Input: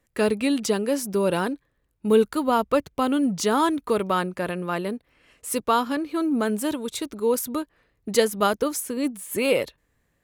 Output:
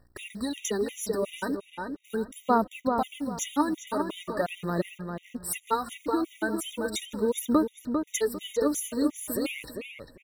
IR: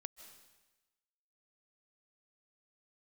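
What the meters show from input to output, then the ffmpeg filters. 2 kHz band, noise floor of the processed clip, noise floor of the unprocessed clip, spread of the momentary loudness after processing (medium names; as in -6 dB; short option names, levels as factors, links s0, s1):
-5.5 dB, -60 dBFS, -71 dBFS, 10 LU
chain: -filter_complex "[0:a]acompressor=threshold=0.0631:ratio=20,aphaser=in_gain=1:out_gain=1:delay=3.5:decay=0.65:speed=0.4:type=sinusoidal,aeval=exprs='val(0)+0.00126*(sin(2*PI*60*n/s)+sin(2*PI*2*60*n/s)/2+sin(2*PI*3*60*n/s)/3+sin(2*PI*4*60*n/s)/4+sin(2*PI*5*60*n/s)/5)':c=same,acrusher=bits=9:dc=4:mix=0:aa=0.000001,asplit=2[s0][s1];[s1]adelay=399,lowpass=f=2900:p=1,volume=0.531,asplit=2[s2][s3];[s3]adelay=399,lowpass=f=2900:p=1,volume=0.28,asplit=2[s4][s5];[s5]adelay=399,lowpass=f=2900:p=1,volume=0.28,asplit=2[s6][s7];[s7]adelay=399,lowpass=f=2900:p=1,volume=0.28[s8];[s0][s2][s4][s6][s8]amix=inputs=5:normalize=0,asplit=2[s9][s10];[1:a]atrim=start_sample=2205,afade=t=out:st=0.36:d=0.01,atrim=end_sample=16317[s11];[s10][s11]afir=irnorm=-1:irlink=0,volume=0.355[s12];[s9][s12]amix=inputs=2:normalize=0,afftfilt=real='re*gt(sin(2*PI*2.8*pts/sr)*(1-2*mod(floor(b*sr/1024/1900),2)),0)':imag='im*gt(sin(2*PI*2.8*pts/sr)*(1-2*mod(floor(b*sr/1024/1900),2)),0)':win_size=1024:overlap=0.75,volume=0.794"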